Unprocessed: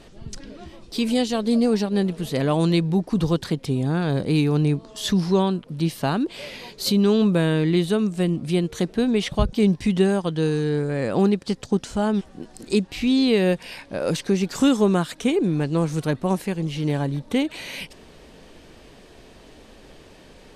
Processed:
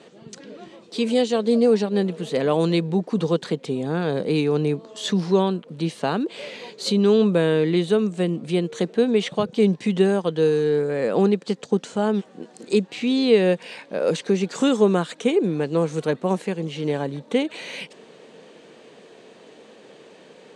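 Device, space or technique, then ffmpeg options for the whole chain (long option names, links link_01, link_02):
television speaker: -af "highpass=frequency=170:width=0.5412,highpass=frequency=170:width=1.3066,equalizer=frequency=280:width_type=q:width=4:gain=-3,equalizer=frequency=470:width_type=q:width=4:gain=7,equalizer=frequency=5200:width_type=q:width=4:gain=-6,lowpass=frequency=8400:width=0.5412,lowpass=frequency=8400:width=1.3066"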